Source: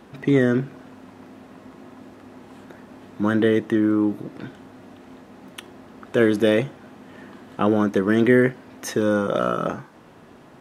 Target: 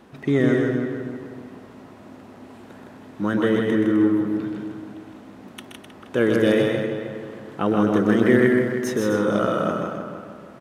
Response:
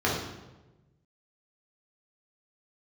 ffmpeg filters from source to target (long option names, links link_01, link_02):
-filter_complex "[0:a]asplit=2[link_01][link_02];[link_02]adelay=314,lowpass=frequency=2500:poles=1,volume=-8dB,asplit=2[link_03][link_04];[link_04]adelay=314,lowpass=frequency=2500:poles=1,volume=0.39,asplit=2[link_05][link_06];[link_06]adelay=314,lowpass=frequency=2500:poles=1,volume=0.39,asplit=2[link_07][link_08];[link_08]adelay=314,lowpass=frequency=2500:poles=1,volume=0.39[link_09];[link_03][link_05][link_07][link_09]amix=inputs=4:normalize=0[link_10];[link_01][link_10]amix=inputs=2:normalize=0,asettb=1/sr,asplit=3[link_11][link_12][link_13];[link_11]atrim=end=8.024[link_14];[link_12]atrim=start=8.02:end=8.91,asetpts=PTS-STARTPTS,afade=type=in:duration=0.004:curve=qsin,afade=type=out:start_time=0.886:duration=0.004:curve=qsin,aeval=exprs='sgn(val(0))*max(abs(val(0))-0.00398,0)':channel_layout=same[link_15];[link_13]atrim=start=8.906[link_16];[link_14][link_15]acrossfade=duration=0.004:curve1=hsin:curve2=qsin[link_17];[link_17][link_16]acrossfade=duration=0.004:curve1=qsin:curve2=hsin,asplit=2[link_18][link_19];[link_19]aecho=0:1:125.4|160.3|256.6:0.501|0.631|0.355[link_20];[link_18][link_20]amix=inputs=2:normalize=0,volume=-2.5dB"